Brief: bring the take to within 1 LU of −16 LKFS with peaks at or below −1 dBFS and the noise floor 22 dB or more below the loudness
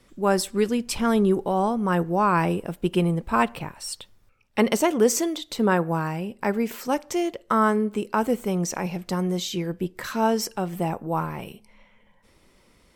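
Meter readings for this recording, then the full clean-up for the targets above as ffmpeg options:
integrated loudness −24.5 LKFS; sample peak −6.0 dBFS; target loudness −16.0 LKFS
→ -af "volume=8.5dB,alimiter=limit=-1dB:level=0:latency=1"

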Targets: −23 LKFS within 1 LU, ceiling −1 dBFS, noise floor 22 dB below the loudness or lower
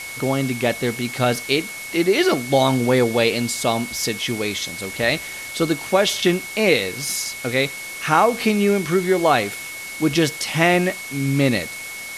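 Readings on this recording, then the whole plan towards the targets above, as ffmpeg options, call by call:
interfering tone 2,200 Hz; level of the tone −32 dBFS; background noise floor −33 dBFS; target noise floor −42 dBFS; integrated loudness −20.0 LKFS; sample peak −3.0 dBFS; target loudness −23.0 LKFS
→ -af "bandreject=frequency=2200:width=30"
-af "afftdn=noise_reduction=9:noise_floor=-33"
-af "volume=-3dB"

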